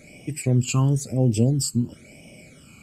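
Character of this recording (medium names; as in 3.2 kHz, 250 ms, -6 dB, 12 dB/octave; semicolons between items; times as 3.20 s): phasing stages 12, 0.99 Hz, lowest notch 600–1400 Hz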